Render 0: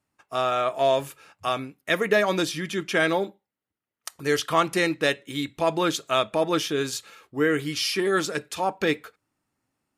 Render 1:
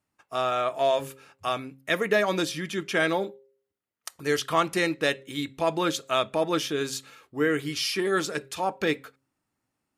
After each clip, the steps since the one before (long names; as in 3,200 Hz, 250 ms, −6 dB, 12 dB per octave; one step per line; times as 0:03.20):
hum removal 134 Hz, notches 4
level −2 dB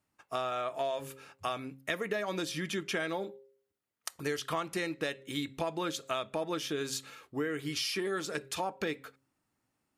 downward compressor 6 to 1, threshold −31 dBFS, peak gain reduction 13 dB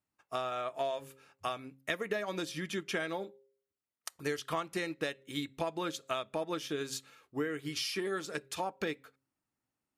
expander for the loud parts 1.5 to 1, over −47 dBFS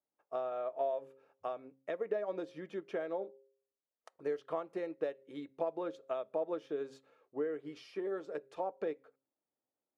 resonant band-pass 530 Hz, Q 2
level +3 dB